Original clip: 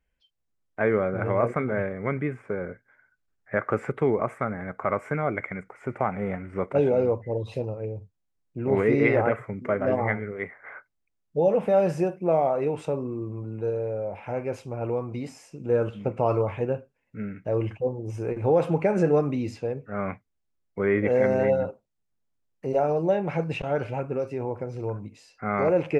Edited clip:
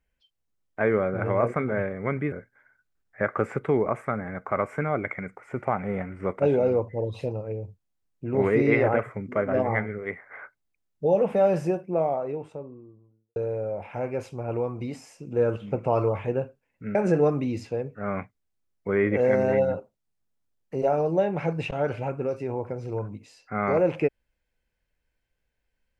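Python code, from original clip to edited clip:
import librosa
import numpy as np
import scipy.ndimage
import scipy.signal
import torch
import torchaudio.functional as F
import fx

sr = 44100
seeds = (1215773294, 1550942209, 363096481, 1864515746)

y = fx.studio_fade_out(x, sr, start_s=11.7, length_s=1.99)
y = fx.edit(y, sr, fx.cut(start_s=2.32, length_s=0.33),
    fx.cut(start_s=17.28, length_s=1.58), tone=tone)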